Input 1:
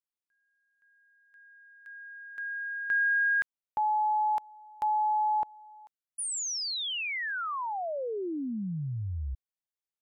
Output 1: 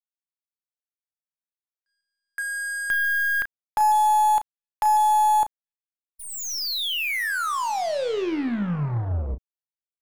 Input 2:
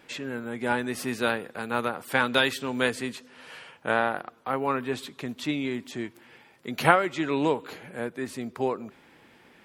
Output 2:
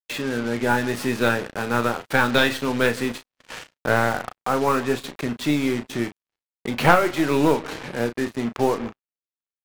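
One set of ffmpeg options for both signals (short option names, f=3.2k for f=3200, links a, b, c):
-filter_complex "[0:a]aeval=exprs='0.794*(cos(1*acos(clip(val(0)/0.794,-1,1)))-cos(1*PI/2))+0.158*(cos(4*acos(clip(val(0)/0.794,-1,1)))-cos(4*PI/2))+0.00631*(cos(8*acos(clip(val(0)/0.794,-1,1)))-cos(8*PI/2))':c=same,asplit=2[a][b];[b]acompressor=threshold=-41dB:ratio=6:attack=7.1:release=329:knee=6:detection=peak,volume=1dB[c];[a][c]amix=inputs=2:normalize=0,lowpass=f=3.2k:p=1,acontrast=53,asplit=2[d][e];[e]adelay=147,lowpass=f=2.3k:p=1,volume=-21.5dB,asplit=2[f][g];[g]adelay=147,lowpass=f=2.3k:p=1,volume=0.54,asplit=2[h][i];[i]adelay=147,lowpass=f=2.3k:p=1,volume=0.54,asplit=2[j][k];[k]adelay=147,lowpass=f=2.3k:p=1,volume=0.54[l];[f][h][j][l]amix=inputs=4:normalize=0[m];[d][m]amix=inputs=2:normalize=0,acrusher=bits=4:mix=0:aa=0.5,agate=range=-36dB:threshold=-42dB:ratio=16:release=71:detection=peak,asplit=2[n][o];[o]adelay=34,volume=-9.5dB[p];[n][p]amix=inputs=2:normalize=0,volume=-1dB"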